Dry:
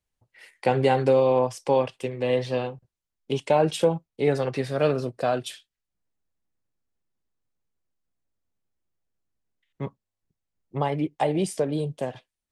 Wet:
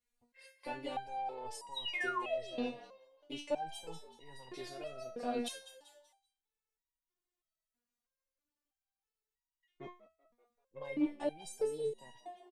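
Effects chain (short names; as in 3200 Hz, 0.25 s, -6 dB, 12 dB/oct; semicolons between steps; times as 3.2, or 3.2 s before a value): one diode to ground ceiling -10.5 dBFS; dynamic EQ 1200 Hz, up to -5 dB, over -40 dBFS, Q 1.1; reverse; compressor, threshold -29 dBFS, peak gain reduction 11.5 dB; reverse; bell 110 Hz -5.5 dB 1.6 oct; doubler 13 ms -11 dB; on a send: frequency-shifting echo 0.192 s, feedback 38%, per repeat +72 Hz, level -13.5 dB; on the sum: painted sound fall, 1.74–2.56, 300–4200 Hz -33 dBFS; stepped resonator 3.1 Hz 240–960 Hz; gain +11 dB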